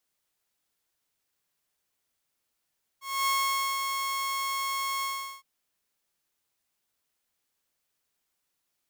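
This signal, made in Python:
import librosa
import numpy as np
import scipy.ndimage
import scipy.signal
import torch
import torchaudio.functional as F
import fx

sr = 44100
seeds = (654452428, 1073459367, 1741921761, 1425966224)

y = fx.adsr_tone(sr, wave='saw', hz=1090.0, attack_ms=257.0, decay_ms=509.0, sustain_db=-5.0, held_s=2.02, release_ms=394.0, level_db=-21.0)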